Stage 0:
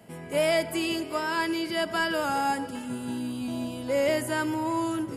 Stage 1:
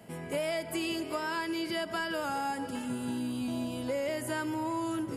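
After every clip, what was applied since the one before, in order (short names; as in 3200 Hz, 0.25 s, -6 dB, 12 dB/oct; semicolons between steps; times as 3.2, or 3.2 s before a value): compressor, threshold -30 dBFS, peak gain reduction 9.5 dB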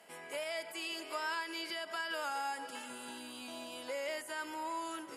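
differentiator; limiter -35.5 dBFS, peak gain reduction 8.5 dB; band-pass 650 Hz, Q 0.51; gain +15 dB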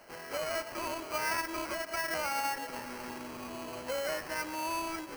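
sample-rate reducer 3600 Hz, jitter 0%; gain +4.5 dB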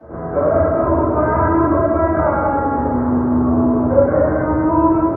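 Gaussian blur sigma 7.4 samples; echo 0.195 s -4.5 dB; reverb RT60 1.1 s, pre-delay 3 ms, DRR -18 dB; gain -3 dB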